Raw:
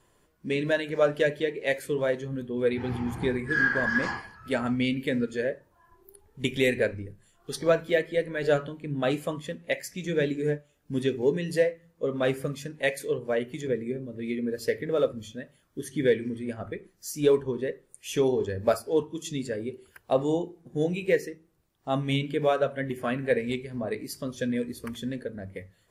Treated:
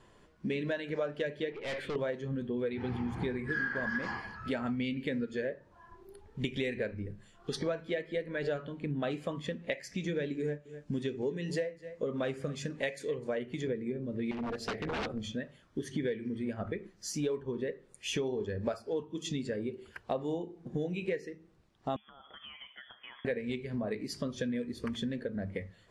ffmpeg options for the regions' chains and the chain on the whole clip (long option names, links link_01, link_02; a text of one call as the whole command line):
ffmpeg -i in.wav -filter_complex "[0:a]asettb=1/sr,asplit=3[link_01][link_02][link_03];[link_01]atrim=end=1.524[link_04];[link_02]atrim=start=1.52:end=1.96,asetpts=PTS-STARTPTS,afade=type=in:duration=0.004:curve=qsin,afade=type=out:start_time=0.436:duration=0.004:curve=qsin,highshelf=frequency=4300:width_type=q:width=3:gain=-8.5,aeval=exprs='(tanh(63.1*val(0)+0.3)-tanh(0.3))/63.1':channel_layout=same[link_05];[link_03]atrim=start=1.956[link_06];[link_04][link_05]acrossfade=duration=0.004:curve1=hsin:curve2=qsin[link_07];[link_07][link_06]acrossfade=duration=0.004:curve1=qsin:curve2=hsin,asettb=1/sr,asplit=3[link_08][link_09][link_10];[link_08]atrim=end=10.404[link_11];[link_09]atrim=start=10.4:end=13.39,asetpts=PTS-STARTPTS,afade=type=in:duration=0.004:curve=qsin,afade=type=out:start_time=2.986:duration=0.004:curve=qsin,equalizer=frequency=7400:width=1.6:gain=5.5,aecho=1:1:255:0.0708,atrim=end_sample=131859[link_12];[link_10]atrim=start=13.386[link_13];[link_11][link_12]acrossfade=duration=0.004:curve1=hsin:curve2=qsin[link_14];[link_14][link_13]acrossfade=duration=0.004:curve1=qsin:curve2=hsin,asettb=1/sr,asplit=3[link_15][link_16][link_17];[link_15]atrim=end=14.314[link_18];[link_16]atrim=start=14.31:end=15.24,asetpts=PTS-STARTPTS,afade=type=in:duration=0.004:curve=qsin,afade=type=out:start_time=0.926:duration=0.004:curve=qsin,tremolo=f=230:d=0.71,aeval=exprs='0.0299*(abs(mod(val(0)/0.0299+3,4)-2)-1)':channel_layout=same[link_19];[link_17]atrim=start=15.236[link_20];[link_18][link_19]acrossfade=duration=0.004:curve1=hsin:curve2=qsin[link_21];[link_21][link_20]acrossfade=duration=0.004:curve1=qsin:curve2=hsin,asettb=1/sr,asplit=3[link_22][link_23][link_24];[link_22]atrim=end=21.964[link_25];[link_23]atrim=start=21.96:end=23.25,asetpts=PTS-STARTPTS,afade=type=in:duration=0.004:curve=qsin,afade=type=out:start_time=1.286:duration=0.004:curve=qsin,aderivative,acompressor=threshold=-48dB:ratio=12:attack=3.2:release=140:knee=1:detection=peak,lowpass=frequency=3100:width_type=q:width=0.5098,lowpass=frequency=3100:width_type=q:width=0.6013,lowpass=frequency=3100:width_type=q:width=0.9,lowpass=frequency=3100:width_type=q:width=2.563,afreqshift=-3600[link_26];[link_24]atrim=start=23.246[link_27];[link_25][link_26]acrossfade=duration=0.004:curve1=hsin:curve2=qsin[link_28];[link_28][link_27]acrossfade=duration=0.004:curve1=qsin:curve2=hsin,lowpass=5300,equalizer=frequency=210:width=7.1:gain=5.5,acompressor=threshold=-37dB:ratio=5,volume=4.5dB" out.wav